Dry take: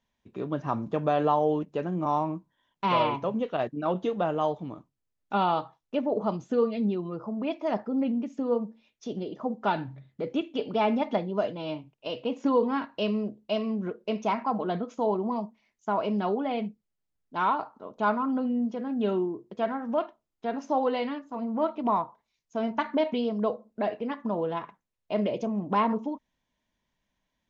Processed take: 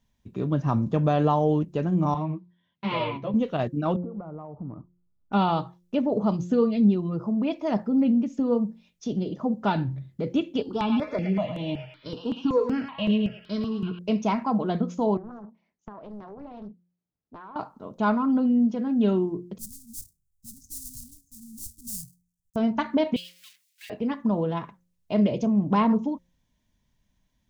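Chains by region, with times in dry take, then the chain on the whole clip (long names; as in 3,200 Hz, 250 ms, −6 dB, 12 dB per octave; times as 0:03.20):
0:02.14–0:03.34: loudspeaker in its box 110–4,400 Hz, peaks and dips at 280 Hz −5 dB, 860 Hz −6 dB, 1,300 Hz −5 dB, 2,100 Hz +5 dB + string-ensemble chorus
0:03.96–0:05.33: linear-phase brick-wall low-pass 1,500 Hz + downward compressor, threshold −39 dBFS
0:10.62–0:13.99: double-tracking delay 16 ms −12.5 dB + feedback echo with a band-pass in the loop 109 ms, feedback 69%, band-pass 2,200 Hz, level −3 dB + step-sequenced phaser 5.3 Hz 600–5,000 Hz
0:15.17–0:17.56: resonant band-pass 560 Hz, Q 0.66 + downward compressor 16 to 1, threshold −40 dBFS + highs frequency-modulated by the lows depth 0.7 ms
0:19.58–0:22.56: gap after every zero crossing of 0.19 ms + inverse Chebyshev band-stop filter 540–1,700 Hz, stop band 80 dB
0:23.16–0:23.90: mu-law and A-law mismatch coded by mu + Butterworth high-pass 2,100 Hz
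whole clip: bass and treble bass +13 dB, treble +7 dB; hum removal 176.6 Hz, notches 3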